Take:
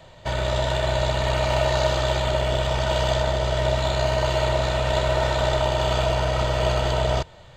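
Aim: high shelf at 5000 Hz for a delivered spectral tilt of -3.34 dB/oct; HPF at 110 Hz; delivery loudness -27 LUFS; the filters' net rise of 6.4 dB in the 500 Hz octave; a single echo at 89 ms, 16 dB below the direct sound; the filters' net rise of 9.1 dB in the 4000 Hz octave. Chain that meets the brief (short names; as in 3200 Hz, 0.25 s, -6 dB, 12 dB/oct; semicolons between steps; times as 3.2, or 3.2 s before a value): HPF 110 Hz; bell 500 Hz +8.5 dB; bell 4000 Hz +8.5 dB; high shelf 5000 Hz +6.5 dB; echo 89 ms -16 dB; gain -9.5 dB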